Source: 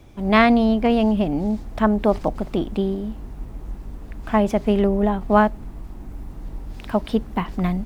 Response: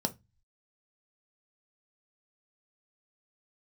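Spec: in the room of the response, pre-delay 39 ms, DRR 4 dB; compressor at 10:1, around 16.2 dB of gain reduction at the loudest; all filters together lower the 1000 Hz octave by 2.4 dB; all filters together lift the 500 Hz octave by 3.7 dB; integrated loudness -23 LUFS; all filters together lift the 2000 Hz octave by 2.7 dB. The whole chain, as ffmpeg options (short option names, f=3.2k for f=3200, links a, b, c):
-filter_complex "[0:a]equalizer=f=500:t=o:g=7,equalizer=f=1k:t=o:g=-7.5,equalizer=f=2k:t=o:g=5,acompressor=threshold=-27dB:ratio=10,asplit=2[a][b];[1:a]atrim=start_sample=2205,adelay=39[c];[b][c]afir=irnorm=-1:irlink=0,volume=-8.5dB[d];[a][d]amix=inputs=2:normalize=0,volume=5dB"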